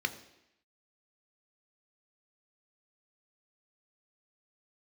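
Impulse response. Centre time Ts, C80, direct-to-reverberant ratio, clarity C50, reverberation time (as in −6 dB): 8 ms, 15.5 dB, 8.0 dB, 14.0 dB, 0.85 s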